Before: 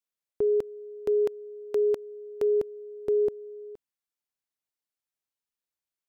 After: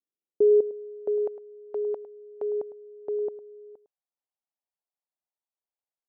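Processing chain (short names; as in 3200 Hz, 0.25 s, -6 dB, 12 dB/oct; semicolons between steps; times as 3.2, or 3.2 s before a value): tilt shelf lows +6 dB; outdoor echo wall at 18 m, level -15 dB; band-pass sweep 340 Hz -> 790 Hz, 0.17–1.44; gain +1.5 dB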